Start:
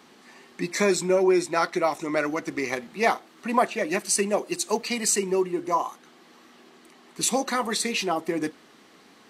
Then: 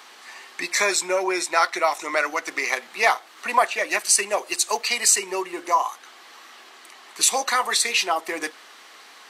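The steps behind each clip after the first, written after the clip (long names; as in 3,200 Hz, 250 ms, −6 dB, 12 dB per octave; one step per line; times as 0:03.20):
high-pass filter 820 Hz 12 dB per octave
in parallel at −2 dB: downward compressor, threshold −36 dBFS, peak gain reduction 16 dB
on the sum: level +5 dB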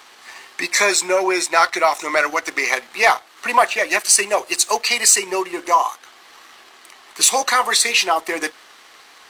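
leveller curve on the samples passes 1
level +1.5 dB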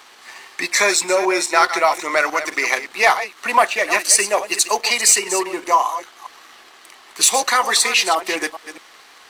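delay that plays each chunk backwards 209 ms, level −11.5 dB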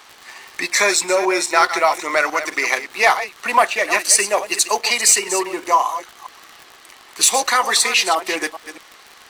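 surface crackle 65 per second −27 dBFS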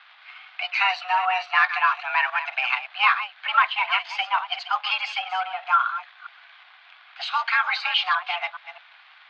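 sub-octave generator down 1 octave, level −4 dB
single-sideband voice off tune +370 Hz 310–3,400 Hz
level −4.5 dB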